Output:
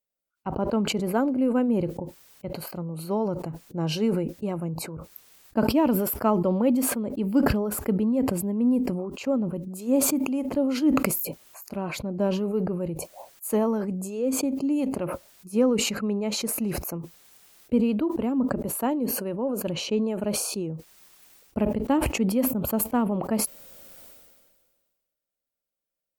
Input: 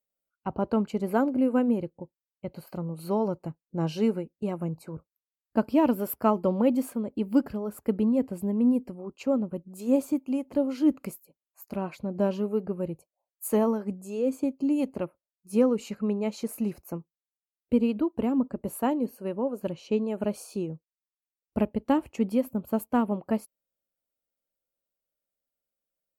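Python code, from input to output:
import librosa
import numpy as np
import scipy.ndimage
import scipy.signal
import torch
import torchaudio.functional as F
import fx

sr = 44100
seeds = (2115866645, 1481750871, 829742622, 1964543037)

y = fx.sustainer(x, sr, db_per_s=35.0)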